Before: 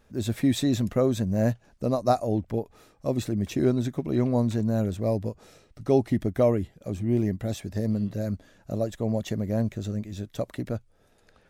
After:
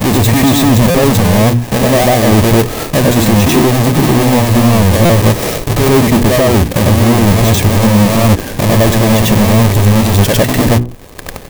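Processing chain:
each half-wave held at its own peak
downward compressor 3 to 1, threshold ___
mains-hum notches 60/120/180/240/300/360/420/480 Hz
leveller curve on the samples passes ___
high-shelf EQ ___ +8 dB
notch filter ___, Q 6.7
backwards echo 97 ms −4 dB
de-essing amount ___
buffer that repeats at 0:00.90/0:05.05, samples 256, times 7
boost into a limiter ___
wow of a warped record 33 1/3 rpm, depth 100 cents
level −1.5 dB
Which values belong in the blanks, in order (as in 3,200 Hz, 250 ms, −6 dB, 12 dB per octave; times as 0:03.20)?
−30 dBFS, 3, 9,300 Hz, 1,400 Hz, 35%, +22.5 dB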